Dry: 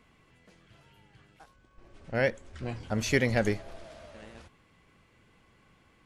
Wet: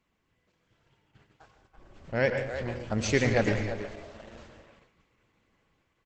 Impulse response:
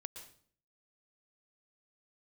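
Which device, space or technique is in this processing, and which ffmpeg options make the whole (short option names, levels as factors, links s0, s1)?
speakerphone in a meeting room: -filter_complex "[1:a]atrim=start_sample=2205[s0];[0:a][s0]afir=irnorm=-1:irlink=0,asplit=2[s1][s2];[s2]adelay=330,highpass=300,lowpass=3400,asoftclip=type=hard:threshold=0.0501,volume=0.398[s3];[s1][s3]amix=inputs=2:normalize=0,dynaudnorm=f=350:g=7:m=2,agate=range=0.398:threshold=0.00126:ratio=16:detection=peak" -ar 48000 -c:a libopus -b:a 12k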